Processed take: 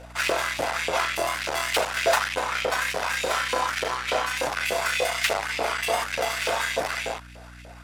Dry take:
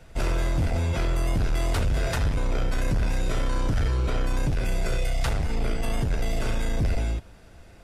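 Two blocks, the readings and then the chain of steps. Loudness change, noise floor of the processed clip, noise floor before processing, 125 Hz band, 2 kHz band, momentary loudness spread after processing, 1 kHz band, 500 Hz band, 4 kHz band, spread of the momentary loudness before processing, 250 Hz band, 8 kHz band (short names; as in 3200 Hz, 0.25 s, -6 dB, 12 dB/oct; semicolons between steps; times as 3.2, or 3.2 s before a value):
+2.5 dB, -44 dBFS, -48 dBFS, -18.5 dB, +11.0 dB, 4 LU, +10.0 dB, +6.0 dB, +10.0 dB, 3 LU, -9.0 dB, +8.5 dB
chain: added harmonics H 8 -18 dB, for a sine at -18 dBFS; LFO high-pass saw up 3.4 Hz 490–2700 Hz; hum 60 Hz, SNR 19 dB; gain +6 dB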